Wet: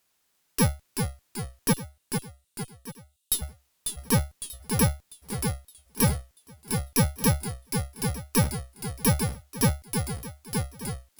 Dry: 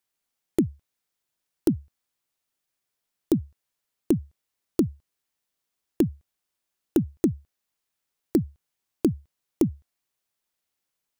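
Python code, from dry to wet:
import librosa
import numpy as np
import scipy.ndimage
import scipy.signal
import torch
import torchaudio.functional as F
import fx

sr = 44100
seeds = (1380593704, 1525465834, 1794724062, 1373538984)

p1 = fx.bit_reversed(x, sr, seeds[0], block=64)
p2 = 10.0 ** (-24.0 / 20.0) * np.tanh(p1 / 10.0 ** (-24.0 / 20.0))
p3 = p1 + (p2 * 10.0 ** (-5.0 / 20.0))
p4 = fx.cheby_ripple_highpass(p3, sr, hz=2700.0, ripple_db=9, at=(1.72, 3.41), fade=0.02)
p5 = fx.fold_sine(p4, sr, drive_db=12, ceiling_db=-7.0)
p6 = p5 + fx.echo_feedback(p5, sr, ms=1183, feedback_pct=29, wet_db=-17, dry=0)
p7 = fx.cheby_harmonics(p6, sr, harmonics=(6,), levels_db=(-18,), full_scale_db=-4.0)
p8 = fx.echo_pitch(p7, sr, ms=348, semitones=-1, count=2, db_per_echo=-6.0)
y = p8 * 10.0 ** (-9.0 / 20.0)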